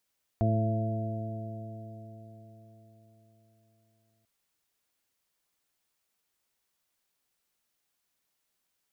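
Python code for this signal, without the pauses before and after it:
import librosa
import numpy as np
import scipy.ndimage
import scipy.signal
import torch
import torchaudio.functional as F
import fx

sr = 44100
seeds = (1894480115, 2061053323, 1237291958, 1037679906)

y = fx.additive_stiff(sr, length_s=3.84, hz=109.0, level_db=-24, upper_db=(-5.0, -10.5, -16.0, -18, -5.0), decay_s=4.6, stiffness=0.0017)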